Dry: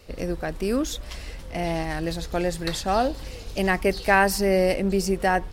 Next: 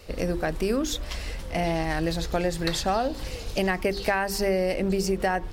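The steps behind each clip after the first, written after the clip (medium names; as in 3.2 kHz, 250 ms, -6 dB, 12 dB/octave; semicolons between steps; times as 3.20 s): hum notches 50/100/150/200/250/300/350/400 Hz; dynamic bell 10 kHz, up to -4 dB, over -50 dBFS, Q 1.4; compression 12:1, threshold -24 dBFS, peak gain reduction 12 dB; trim +3.5 dB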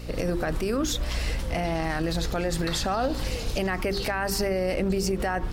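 dynamic bell 1.3 kHz, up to +6 dB, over -45 dBFS, Q 3.2; peak limiter -22.5 dBFS, peak gain reduction 11.5 dB; hum 60 Hz, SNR 11 dB; trim +4.5 dB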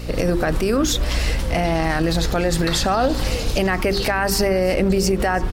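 delay 337 ms -21.5 dB; trim +7.5 dB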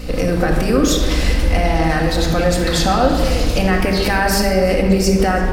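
simulated room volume 2200 m³, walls mixed, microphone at 2 m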